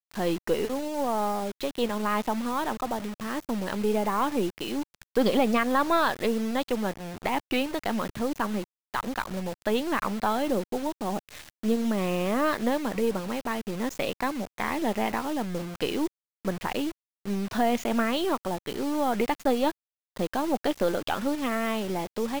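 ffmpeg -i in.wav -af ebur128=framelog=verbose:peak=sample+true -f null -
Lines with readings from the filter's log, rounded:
Integrated loudness:
  I:         -28.5 LUFS
  Threshold: -38.6 LUFS
Loudness range:
  LRA:         3.8 LU
  Threshold: -48.5 LUFS
  LRA low:   -30.2 LUFS
  LRA high:  -26.4 LUFS
Sample peak:
  Peak:      -11.3 dBFS
True peak:
  Peak:      -11.3 dBFS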